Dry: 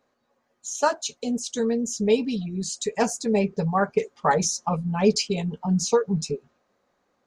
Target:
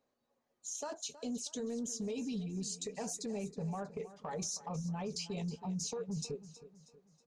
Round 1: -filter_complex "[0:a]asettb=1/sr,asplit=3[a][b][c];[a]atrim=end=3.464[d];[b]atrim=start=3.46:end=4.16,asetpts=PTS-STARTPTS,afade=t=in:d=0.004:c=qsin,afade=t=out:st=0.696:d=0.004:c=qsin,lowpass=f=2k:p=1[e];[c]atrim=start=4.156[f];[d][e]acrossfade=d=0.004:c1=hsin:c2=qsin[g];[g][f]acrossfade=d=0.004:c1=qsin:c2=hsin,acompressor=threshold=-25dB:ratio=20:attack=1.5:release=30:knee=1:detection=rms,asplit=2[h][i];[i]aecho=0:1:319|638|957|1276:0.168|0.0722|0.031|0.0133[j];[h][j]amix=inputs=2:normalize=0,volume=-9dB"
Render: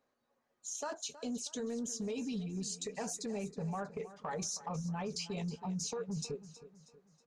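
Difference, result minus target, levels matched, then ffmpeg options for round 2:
2000 Hz band +4.0 dB
-filter_complex "[0:a]asettb=1/sr,asplit=3[a][b][c];[a]atrim=end=3.464[d];[b]atrim=start=3.46:end=4.16,asetpts=PTS-STARTPTS,afade=t=in:d=0.004:c=qsin,afade=t=out:st=0.696:d=0.004:c=qsin,lowpass=f=2k:p=1[e];[c]atrim=start=4.156[f];[d][e]acrossfade=d=0.004:c1=hsin:c2=qsin[g];[g][f]acrossfade=d=0.004:c1=qsin:c2=hsin,acompressor=threshold=-25dB:ratio=20:attack=1.5:release=30:knee=1:detection=rms,equalizer=f=1.5k:w=1.1:g=-6,asplit=2[h][i];[i]aecho=0:1:319|638|957|1276:0.168|0.0722|0.031|0.0133[j];[h][j]amix=inputs=2:normalize=0,volume=-9dB"

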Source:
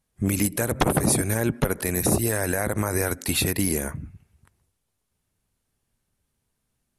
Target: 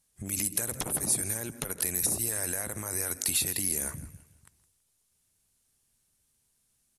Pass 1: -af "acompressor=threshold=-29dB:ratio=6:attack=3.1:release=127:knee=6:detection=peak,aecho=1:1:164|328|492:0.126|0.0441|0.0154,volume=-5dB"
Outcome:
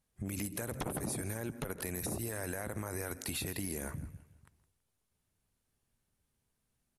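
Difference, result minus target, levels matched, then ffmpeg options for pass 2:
8000 Hz band -4.0 dB
-af "acompressor=threshold=-29dB:ratio=6:attack=3.1:release=127:knee=6:detection=peak,equalizer=f=8.6k:w=0.37:g=14.5,aecho=1:1:164|328|492:0.126|0.0441|0.0154,volume=-5dB"

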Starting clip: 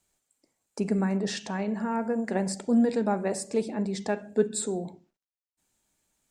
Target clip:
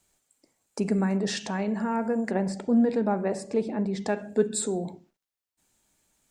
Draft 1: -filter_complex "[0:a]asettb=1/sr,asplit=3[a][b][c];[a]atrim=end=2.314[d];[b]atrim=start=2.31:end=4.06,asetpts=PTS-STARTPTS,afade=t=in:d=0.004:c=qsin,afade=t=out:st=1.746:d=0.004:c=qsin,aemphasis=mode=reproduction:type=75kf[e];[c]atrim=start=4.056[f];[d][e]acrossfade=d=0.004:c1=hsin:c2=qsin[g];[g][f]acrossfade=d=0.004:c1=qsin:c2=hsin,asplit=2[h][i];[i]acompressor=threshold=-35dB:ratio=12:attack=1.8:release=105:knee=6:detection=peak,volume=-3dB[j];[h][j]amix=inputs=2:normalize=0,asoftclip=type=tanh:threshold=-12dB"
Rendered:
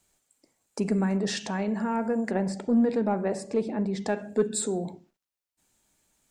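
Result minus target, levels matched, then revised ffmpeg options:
soft clip: distortion +21 dB
-filter_complex "[0:a]asettb=1/sr,asplit=3[a][b][c];[a]atrim=end=2.314[d];[b]atrim=start=2.31:end=4.06,asetpts=PTS-STARTPTS,afade=t=in:d=0.004:c=qsin,afade=t=out:st=1.746:d=0.004:c=qsin,aemphasis=mode=reproduction:type=75kf[e];[c]atrim=start=4.056[f];[d][e]acrossfade=d=0.004:c1=hsin:c2=qsin[g];[g][f]acrossfade=d=0.004:c1=qsin:c2=hsin,asplit=2[h][i];[i]acompressor=threshold=-35dB:ratio=12:attack=1.8:release=105:knee=6:detection=peak,volume=-3dB[j];[h][j]amix=inputs=2:normalize=0,asoftclip=type=tanh:threshold=-0.5dB"

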